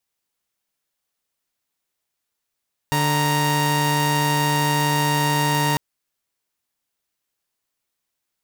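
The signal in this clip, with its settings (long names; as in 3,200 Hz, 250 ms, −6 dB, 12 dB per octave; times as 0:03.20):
held notes D3/A#5 saw, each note −18 dBFS 2.85 s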